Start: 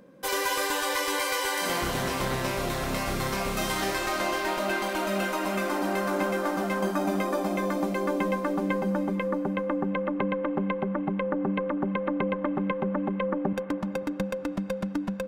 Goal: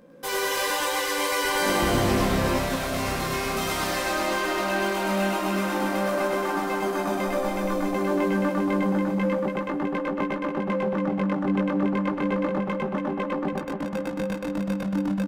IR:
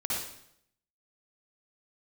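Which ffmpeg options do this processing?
-filter_complex "[0:a]flanger=delay=18:depth=2.4:speed=0.3,asplit=2[s0][s1];[s1]asoftclip=type=hard:threshold=0.0178,volume=0.596[s2];[s0][s2]amix=inputs=2:normalize=0,asettb=1/sr,asplit=3[s3][s4][s5];[s3]atrim=end=1.434[s6];[s4]atrim=start=1.43:end=2.48,asetpts=PTS-STARTPTS,afade=t=in:d=0.004:c=qsin,afade=t=out:st=1.046:d=0.004:c=qsin,lowshelf=f=490:g=9[s7];[s5]atrim=start=2.476[s8];[s6][s7]acrossfade=d=0.004:c1=hsin:c2=qsin[s9];[s9][s8]acrossfade=d=0.004:c1=qsin:c2=hsin,aecho=1:1:102|282.8:0.794|0.562,asplit=3[s10][s11][s12];[s10]afade=t=out:st=7.27:d=0.02[s13];[s11]asubboost=boost=7:cutoff=55,afade=t=in:st=7.27:d=0.02,afade=t=out:st=7.94:d=0.02[s14];[s12]afade=t=in:st=7.94:d=0.02[s15];[s13][s14][s15]amix=inputs=3:normalize=0"

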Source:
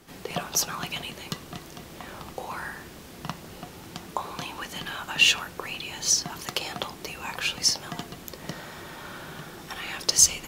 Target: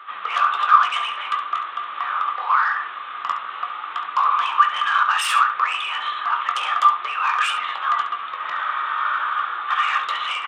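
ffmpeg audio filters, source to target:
-filter_complex "[0:a]acontrast=55,aresample=8000,asoftclip=type=tanh:threshold=0.119,aresample=44100,flanger=delay=9.9:depth=5.7:regen=64:speed=0.38:shape=triangular,aeval=exprs='0.168*sin(PI/2*3.16*val(0)/0.168)':c=same,highpass=f=1200:t=q:w=12,asplit=2[s0][s1];[s1]aecho=0:1:22|69:0.282|0.299[s2];[s0][s2]amix=inputs=2:normalize=0,volume=0.447"

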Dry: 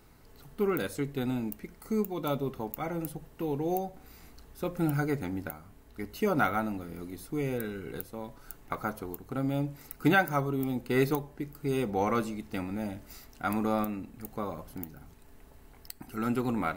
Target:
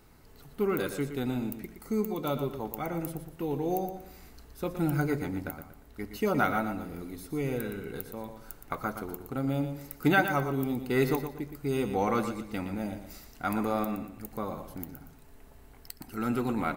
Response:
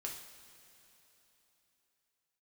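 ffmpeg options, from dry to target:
-af "aecho=1:1:118|236|354|472:0.355|0.117|0.0386|0.0128"

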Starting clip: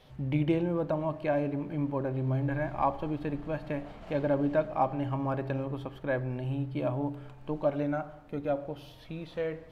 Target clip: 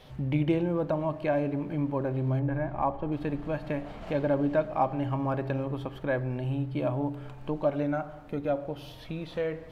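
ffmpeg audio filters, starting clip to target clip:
-filter_complex "[0:a]asplit=2[s0][s1];[s1]acompressor=threshold=0.01:ratio=6,volume=0.891[s2];[s0][s2]amix=inputs=2:normalize=0,asettb=1/sr,asplit=3[s3][s4][s5];[s3]atrim=end=2.394[s6];[s4]atrim=start=2.39:end=3.12,asetpts=PTS-STARTPTS,afade=t=in:d=0.004:c=qsin,afade=t=out:st=0.726:d=0.004:c=qsin,lowpass=f=1200:p=1[s7];[s5]atrim=start=3.116[s8];[s6][s7]acrossfade=d=0.004:c1=hsin:c2=qsin[s9];[s9][s8]acrossfade=d=0.004:c1=qsin:c2=hsin"

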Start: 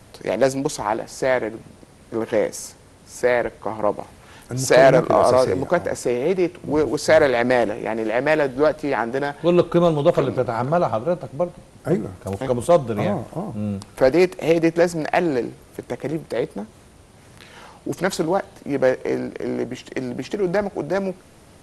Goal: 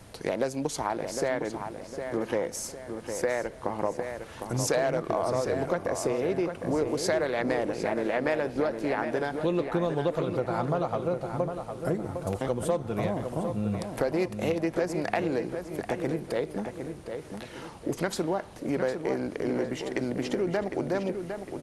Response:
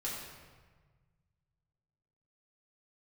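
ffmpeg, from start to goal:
-filter_complex "[0:a]acompressor=threshold=0.0708:ratio=5,asplit=2[s0][s1];[s1]adelay=757,lowpass=f=3400:p=1,volume=0.447,asplit=2[s2][s3];[s3]adelay=757,lowpass=f=3400:p=1,volume=0.42,asplit=2[s4][s5];[s5]adelay=757,lowpass=f=3400:p=1,volume=0.42,asplit=2[s6][s7];[s7]adelay=757,lowpass=f=3400:p=1,volume=0.42,asplit=2[s8][s9];[s9]adelay=757,lowpass=f=3400:p=1,volume=0.42[s10];[s0][s2][s4][s6][s8][s10]amix=inputs=6:normalize=0,volume=0.794"

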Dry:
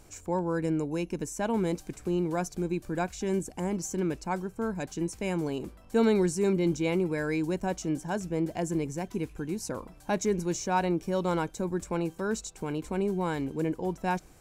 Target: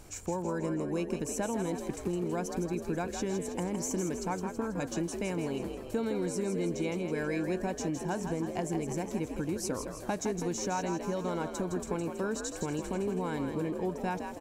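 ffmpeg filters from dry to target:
-filter_complex "[0:a]acompressor=threshold=0.0224:ratio=6,asplit=2[s0][s1];[s1]asplit=7[s2][s3][s4][s5][s6][s7][s8];[s2]adelay=162,afreqshift=53,volume=0.447[s9];[s3]adelay=324,afreqshift=106,volume=0.245[s10];[s4]adelay=486,afreqshift=159,volume=0.135[s11];[s5]adelay=648,afreqshift=212,volume=0.0741[s12];[s6]adelay=810,afreqshift=265,volume=0.0407[s13];[s7]adelay=972,afreqshift=318,volume=0.0224[s14];[s8]adelay=1134,afreqshift=371,volume=0.0123[s15];[s9][s10][s11][s12][s13][s14][s15]amix=inputs=7:normalize=0[s16];[s0][s16]amix=inputs=2:normalize=0,volume=1.41"

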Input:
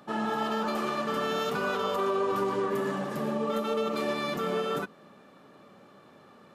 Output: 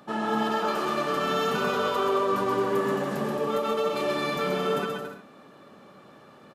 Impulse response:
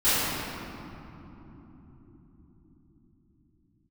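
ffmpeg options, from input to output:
-af "aecho=1:1:130|221|284.7|329.3|360.5:0.631|0.398|0.251|0.158|0.1,volume=1.19"

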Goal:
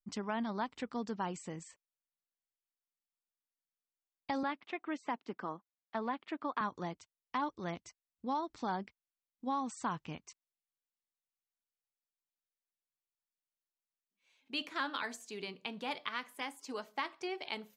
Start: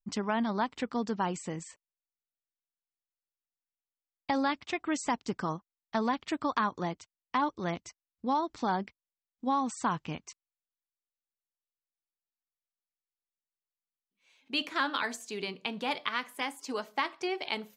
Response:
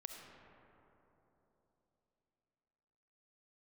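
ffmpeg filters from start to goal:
-filter_complex "[0:a]asettb=1/sr,asplit=3[s0][s1][s2];[s0]atrim=end=4.434[s3];[s1]atrim=start=4.43:end=6.61,asetpts=PTS-STARTPTS,afade=t=in:d=0.004:c=qsin,afade=t=out:st=2.176:d=0.004:c=qsin,acrossover=split=190 3600:gain=0.0631 1 0.0794[s4][s5][s6];[s4][s5][s6]amix=inputs=3:normalize=0[s7];[s2]atrim=start=6.606[s8];[s3][s7]acrossfade=d=0.004:c1=hsin:c2=qsin[s9];[s9][s8]acrossfade=d=0.004:c1=qsin:c2=hsin,volume=0.473"

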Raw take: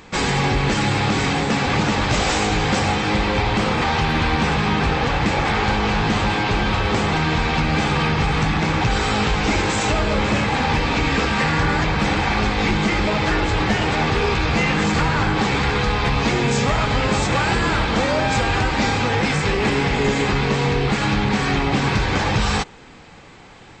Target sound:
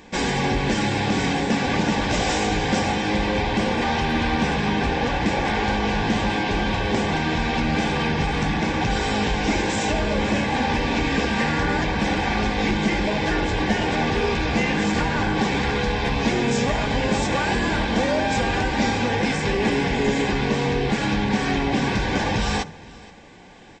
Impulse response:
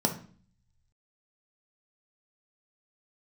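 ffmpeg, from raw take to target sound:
-filter_complex "[0:a]asuperstop=centerf=1300:order=12:qfactor=6.9,aecho=1:1:476:0.0794,asplit=2[s0][s1];[1:a]atrim=start_sample=2205[s2];[s1][s2]afir=irnorm=-1:irlink=0,volume=0.0944[s3];[s0][s3]amix=inputs=2:normalize=0,volume=0.631"

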